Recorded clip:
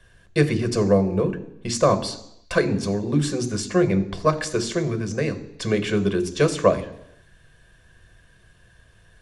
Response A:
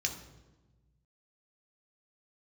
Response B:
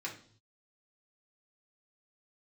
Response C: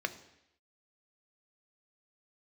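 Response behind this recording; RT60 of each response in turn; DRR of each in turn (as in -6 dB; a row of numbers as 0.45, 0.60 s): C; 1.2, 0.55, 0.80 s; 3.0, -3.5, 9.0 dB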